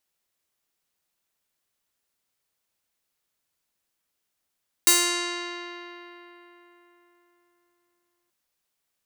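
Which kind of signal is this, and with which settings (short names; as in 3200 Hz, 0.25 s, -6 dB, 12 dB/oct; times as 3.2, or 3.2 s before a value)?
plucked string F4, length 3.43 s, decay 3.96 s, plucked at 0.42, bright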